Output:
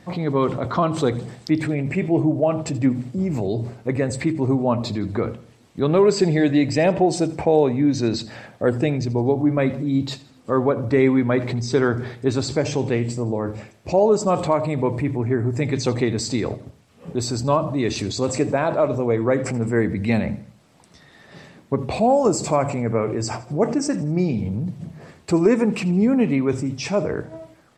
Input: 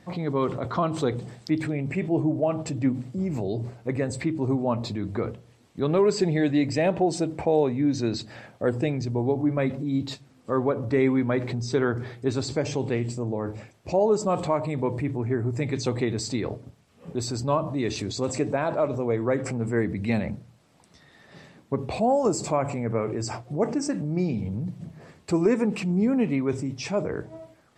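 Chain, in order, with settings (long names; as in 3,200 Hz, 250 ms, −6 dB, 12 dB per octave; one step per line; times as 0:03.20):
repeating echo 81 ms, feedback 43%, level −18.5 dB
level +5 dB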